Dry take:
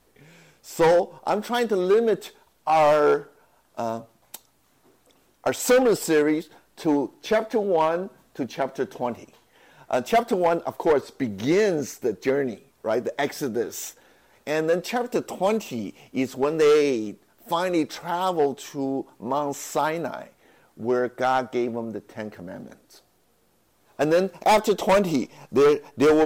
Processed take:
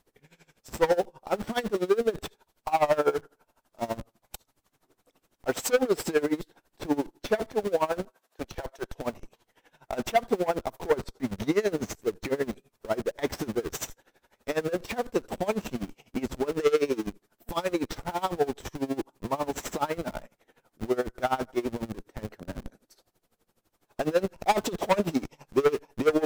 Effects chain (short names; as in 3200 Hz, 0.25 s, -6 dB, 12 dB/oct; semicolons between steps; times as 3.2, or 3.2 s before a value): 8.05–8.98 HPF 540 Hz 12 dB/oct; in parallel at -7 dB: Schmitt trigger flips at -33 dBFS; on the sum: dB-linear tremolo 12 Hz, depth 21 dB; gain -2 dB